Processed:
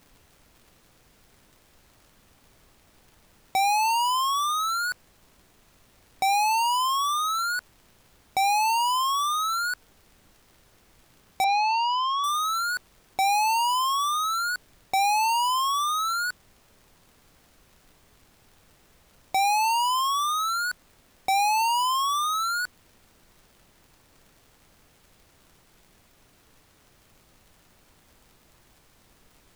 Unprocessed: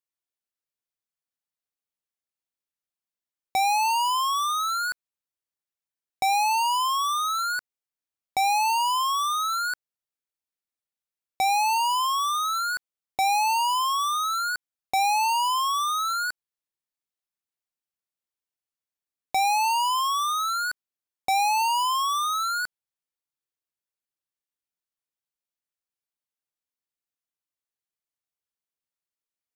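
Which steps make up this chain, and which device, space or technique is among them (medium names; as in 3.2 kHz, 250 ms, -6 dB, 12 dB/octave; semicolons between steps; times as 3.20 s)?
vinyl LP (crackle; pink noise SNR 31 dB); 11.44–12.24 s: Chebyshev band-pass 690–4700 Hz, order 3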